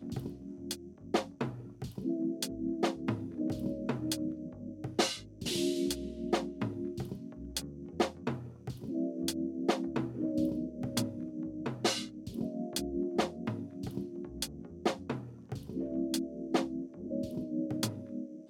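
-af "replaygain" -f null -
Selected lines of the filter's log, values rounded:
track_gain = +15.1 dB
track_peak = 0.113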